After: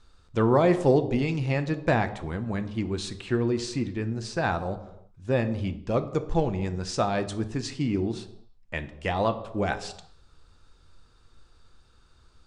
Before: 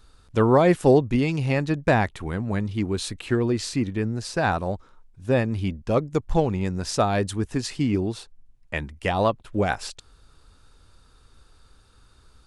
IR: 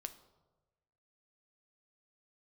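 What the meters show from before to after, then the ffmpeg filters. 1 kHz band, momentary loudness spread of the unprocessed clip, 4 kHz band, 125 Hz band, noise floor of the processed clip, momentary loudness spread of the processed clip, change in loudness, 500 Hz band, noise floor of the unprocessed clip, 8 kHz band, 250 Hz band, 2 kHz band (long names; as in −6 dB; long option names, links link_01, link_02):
−3.5 dB, 12 LU, −3.5 dB, −3.5 dB, −58 dBFS, 11 LU, −3.5 dB, −3.5 dB, −56 dBFS, −5.5 dB, −3.5 dB, −3.5 dB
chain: -filter_complex "[0:a]lowpass=frequency=8200:width=0.5412,lowpass=frequency=8200:width=1.3066[link_01];[1:a]atrim=start_sample=2205,afade=type=out:start_time=0.41:duration=0.01,atrim=end_sample=18522[link_02];[link_01][link_02]afir=irnorm=-1:irlink=0"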